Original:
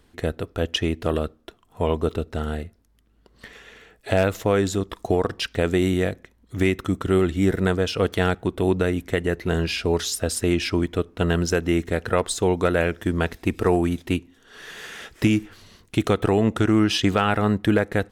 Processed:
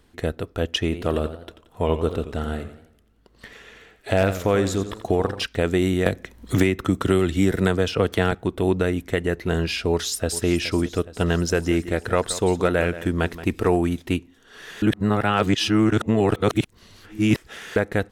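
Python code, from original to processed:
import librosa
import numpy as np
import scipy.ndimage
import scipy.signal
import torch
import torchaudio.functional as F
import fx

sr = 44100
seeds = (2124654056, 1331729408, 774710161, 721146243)

y = fx.echo_warbled(x, sr, ms=86, feedback_pct=46, rate_hz=2.8, cents=127, wet_db=-11.5, at=(0.83, 5.45))
y = fx.band_squash(y, sr, depth_pct=100, at=(6.06, 8.32))
y = fx.echo_throw(y, sr, start_s=9.9, length_s=0.56, ms=420, feedback_pct=65, wet_db=-14.5)
y = fx.echo_single(y, sr, ms=175, db=-14.5, at=(11.52, 13.68), fade=0.02)
y = fx.edit(y, sr, fx.reverse_span(start_s=14.82, length_s=2.94), tone=tone)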